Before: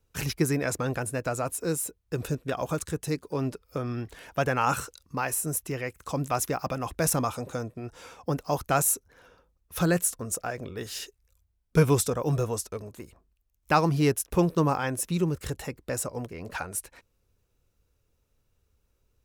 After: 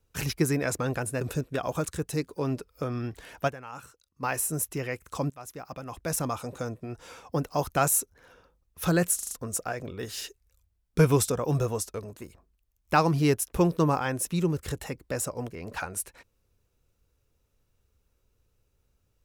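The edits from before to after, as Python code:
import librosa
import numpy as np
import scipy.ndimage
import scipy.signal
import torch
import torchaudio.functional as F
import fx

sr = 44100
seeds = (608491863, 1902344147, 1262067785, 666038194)

y = fx.edit(x, sr, fx.cut(start_s=1.21, length_s=0.94),
    fx.fade_down_up(start_s=4.41, length_s=0.77, db=-17.0, fade_s=0.24, curve='exp'),
    fx.fade_in_from(start_s=6.24, length_s=1.5, floor_db=-21.5),
    fx.stutter(start_s=10.09, slice_s=0.04, count=5), tone=tone)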